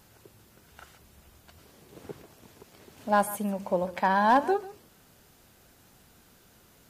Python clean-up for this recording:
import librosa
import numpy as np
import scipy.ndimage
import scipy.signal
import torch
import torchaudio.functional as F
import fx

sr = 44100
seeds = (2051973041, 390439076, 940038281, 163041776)

y = fx.fix_declip(x, sr, threshold_db=-13.5)
y = fx.fix_echo_inverse(y, sr, delay_ms=145, level_db=-17.5)